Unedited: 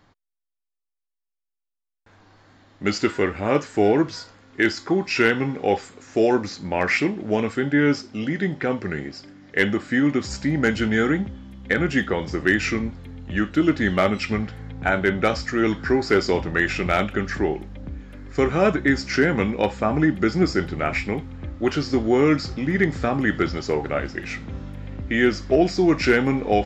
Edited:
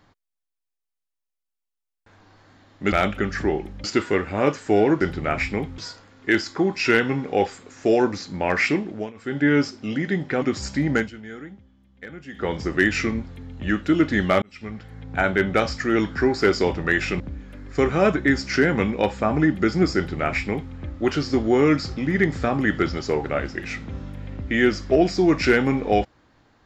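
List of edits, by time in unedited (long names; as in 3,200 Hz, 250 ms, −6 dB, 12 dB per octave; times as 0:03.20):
0:07.15–0:07.74: duck −23 dB, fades 0.29 s
0:08.73–0:10.10: remove
0:10.63–0:12.17: duck −17.5 dB, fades 0.16 s
0:14.10–0:14.93: fade in
0:16.88–0:17.80: move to 0:02.92
0:20.56–0:21.33: duplicate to 0:04.09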